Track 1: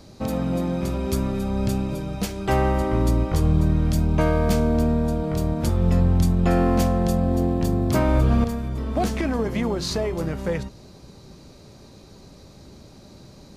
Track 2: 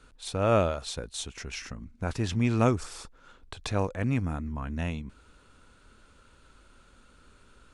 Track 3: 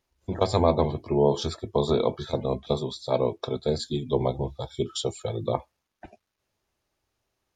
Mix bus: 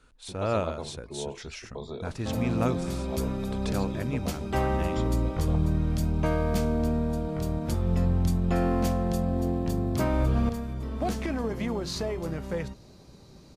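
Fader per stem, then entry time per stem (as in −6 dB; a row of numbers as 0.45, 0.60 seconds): −6.0, −4.0, −15.0 decibels; 2.05, 0.00, 0.00 seconds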